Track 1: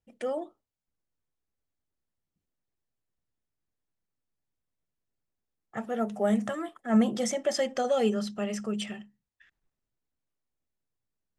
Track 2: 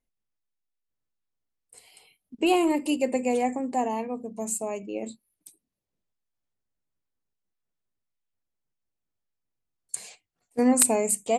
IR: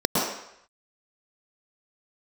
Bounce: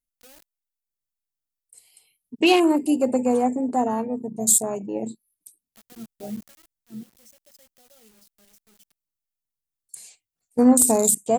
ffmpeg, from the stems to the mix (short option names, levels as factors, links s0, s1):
-filter_complex "[0:a]equalizer=f=74:t=o:w=0.63:g=-14.5,acrusher=bits=4:mix=0:aa=0.000001,volume=0.224,afade=t=out:st=6.36:d=0.41:silence=0.375837[s0];[1:a]deesser=0.5,volume=1[s1];[s0][s1]amix=inputs=2:normalize=0,lowshelf=f=330:g=9.5,crystalizer=i=6.5:c=0,afwtdn=0.0562"